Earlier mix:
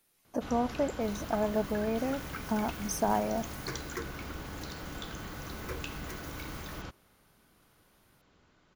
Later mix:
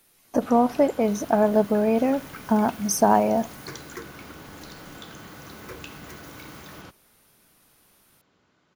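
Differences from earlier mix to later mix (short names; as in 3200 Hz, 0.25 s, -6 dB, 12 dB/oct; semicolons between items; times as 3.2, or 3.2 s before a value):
speech +10.5 dB; first sound: add HPF 110 Hz 12 dB/oct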